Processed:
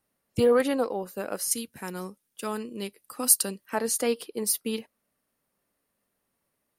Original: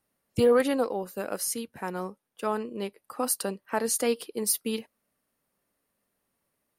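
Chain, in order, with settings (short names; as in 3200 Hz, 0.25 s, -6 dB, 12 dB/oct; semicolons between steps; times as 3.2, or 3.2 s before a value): 1.51–3.75 EQ curve 270 Hz 0 dB, 730 Hz -7 dB, 7200 Hz +9 dB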